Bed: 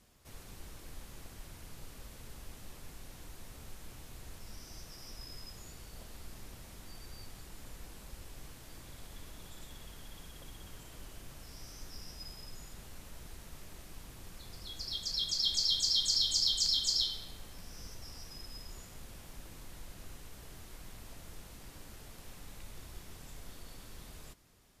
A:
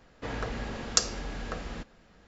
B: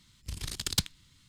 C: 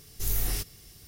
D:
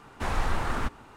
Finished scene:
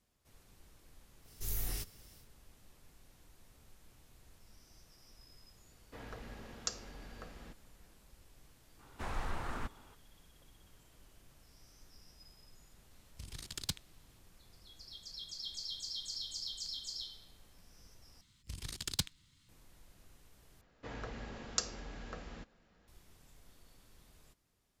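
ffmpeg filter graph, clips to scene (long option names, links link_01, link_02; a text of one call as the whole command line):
ffmpeg -i bed.wav -i cue0.wav -i cue1.wav -i cue2.wav -i cue3.wav -filter_complex "[1:a]asplit=2[link_01][link_02];[2:a]asplit=2[link_03][link_04];[0:a]volume=-12.5dB,asplit=3[link_05][link_06][link_07];[link_05]atrim=end=18.214[link_08];[link_04]atrim=end=1.28,asetpts=PTS-STARTPTS,volume=-6.5dB[link_09];[link_06]atrim=start=19.486:end=20.614[link_10];[link_02]atrim=end=2.27,asetpts=PTS-STARTPTS,volume=-10dB[link_11];[link_07]atrim=start=22.876[link_12];[3:a]atrim=end=1.07,asetpts=PTS-STARTPTS,volume=-9dB,afade=type=in:duration=0.1,afade=type=out:start_time=0.97:duration=0.1,adelay=1210[link_13];[link_01]atrim=end=2.27,asetpts=PTS-STARTPTS,volume=-14dB,afade=type=in:duration=0.004:curve=hsin,afade=type=out:start_time=2.266:duration=0.004:curve=hsin,adelay=5700[link_14];[4:a]atrim=end=1.16,asetpts=PTS-STARTPTS,volume=-11dB,afade=type=in:duration=0.004:curve=hsin,afade=type=out:start_time=1.156:duration=0.004:curve=hsin,adelay=8790[link_15];[link_03]atrim=end=1.28,asetpts=PTS-STARTPTS,volume=-10dB,afade=type=in:duration=0.004:curve=hsin,afade=type=out:start_time=1.276:duration=0.004:curve=hsin,adelay=12910[link_16];[link_08][link_09]acrossfade=duration=0.004:curve1=hsin:curve2=hsin[link_17];[link_17][link_10]acrossfade=duration=0.004:curve1=hsin:curve2=hsin[link_18];[link_18][link_11]acrossfade=duration=0.004:curve1=hsin:curve2=hsin[link_19];[link_19][link_12]acrossfade=duration=0.004:curve1=hsin:curve2=hsin[link_20];[link_20][link_13][link_14][link_15][link_16]amix=inputs=5:normalize=0" out.wav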